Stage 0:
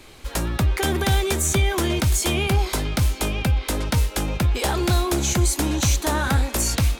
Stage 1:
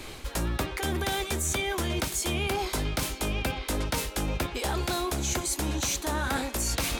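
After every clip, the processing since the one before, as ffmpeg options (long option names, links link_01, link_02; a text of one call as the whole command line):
ffmpeg -i in.wav -af "afftfilt=real='re*lt(hypot(re,im),0.708)':imag='im*lt(hypot(re,im),0.708)':win_size=1024:overlap=0.75,areverse,acompressor=threshold=-31dB:ratio=8,areverse,volume=5dB" out.wav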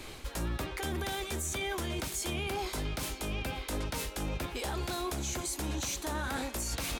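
ffmpeg -i in.wav -af "alimiter=limit=-22dB:level=0:latency=1:release=19,aecho=1:1:521:0.075,volume=-4dB" out.wav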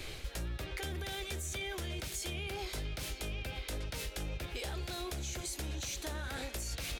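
ffmpeg -i in.wav -af "equalizer=frequency=250:width_type=o:width=1:gain=-9,equalizer=frequency=1000:width_type=o:width=1:gain=-10,equalizer=frequency=8000:width_type=o:width=1:gain=-3,equalizer=frequency=16000:width_type=o:width=1:gain=-5,acompressor=threshold=-40dB:ratio=6,volume=4dB" out.wav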